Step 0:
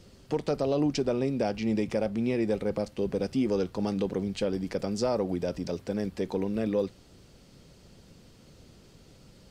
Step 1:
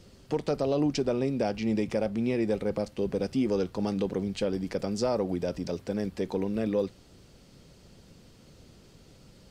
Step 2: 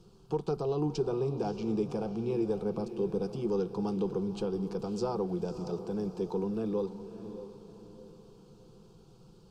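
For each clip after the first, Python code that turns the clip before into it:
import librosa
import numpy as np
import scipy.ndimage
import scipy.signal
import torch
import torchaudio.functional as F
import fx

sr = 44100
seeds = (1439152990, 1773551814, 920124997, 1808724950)

y1 = x
y2 = fx.high_shelf(y1, sr, hz=3500.0, db=-10.5)
y2 = fx.fixed_phaser(y2, sr, hz=390.0, stages=8)
y2 = fx.echo_diffused(y2, sr, ms=578, feedback_pct=43, wet_db=-11.0)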